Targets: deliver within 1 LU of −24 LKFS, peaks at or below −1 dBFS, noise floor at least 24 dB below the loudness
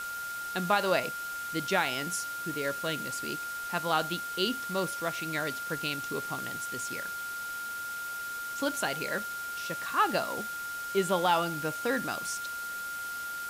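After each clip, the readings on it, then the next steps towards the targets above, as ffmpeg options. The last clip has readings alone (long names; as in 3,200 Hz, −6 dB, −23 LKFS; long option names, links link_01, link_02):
interfering tone 1,400 Hz; level of the tone −35 dBFS; background noise floor −37 dBFS; target noise floor −56 dBFS; integrated loudness −31.5 LKFS; sample peak −13.0 dBFS; target loudness −24.0 LKFS
→ -af "bandreject=frequency=1400:width=30"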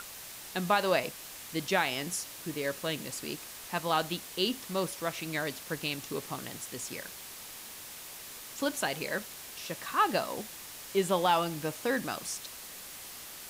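interfering tone none found; background noise floor −46 dBFS; target noise floor −58 dBFS
→ -af "afftdn=noise_reduction=12:noise_floor=-46"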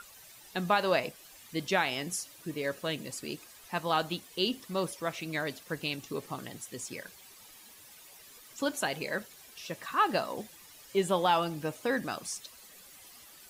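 background noise floor −54 dBFS; target noise floor −57 dBFS
→ -af "afftdn=noise_reduction=6:noise_floor=-54"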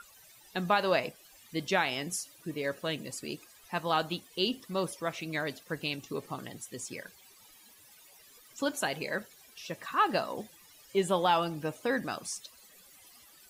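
background noise floor −58 dBFS; integrated loudness −33.0 LKFS; sample peak −14.0 dBFS; target loudness −24.0 LKFS
→ -af "volume=9dB"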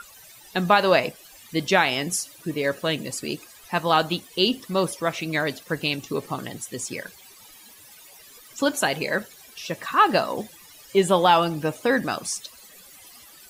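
integrated loudness −24.0 LKFS; sample peak −5.0 dBFS; background noise floor −49 dBFS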